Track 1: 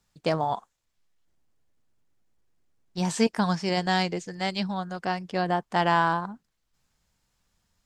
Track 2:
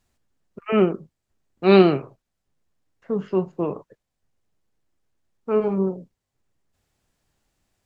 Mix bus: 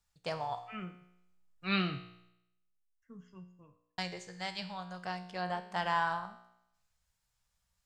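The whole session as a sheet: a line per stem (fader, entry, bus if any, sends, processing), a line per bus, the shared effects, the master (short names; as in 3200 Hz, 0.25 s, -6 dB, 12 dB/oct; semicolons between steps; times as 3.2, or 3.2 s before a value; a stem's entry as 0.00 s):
0.0 dB, 0.00 s, muted 2.29–3.98, no send, dry
+2.0 dB, 0.00 s, no send, per-bin expansion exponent 1.5; band shelf 610 Hz -15.5 dB; auto duck -15 dB, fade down 1.05 s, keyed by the first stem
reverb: off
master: bell 280 Hz -14 dB 1.2 oct; resonator 60 Hz, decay 0.81 s, harmonics all, mix 70%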